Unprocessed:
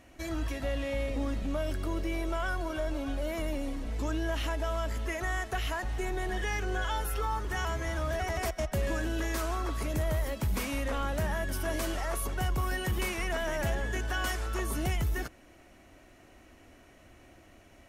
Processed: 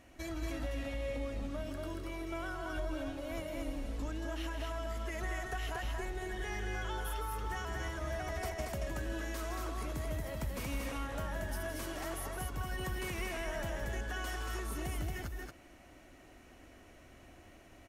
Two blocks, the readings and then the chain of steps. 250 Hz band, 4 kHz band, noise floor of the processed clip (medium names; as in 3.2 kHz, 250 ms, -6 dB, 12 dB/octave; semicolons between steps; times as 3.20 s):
-6.0 dB, -6.5 dB, -58 dBFS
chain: compression, threshold -34 dBFS, peak gain reduction 7.5 dB; loudspeakers at several distances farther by 56 m -9 dB, 79 m -3 dB; trim -3 dB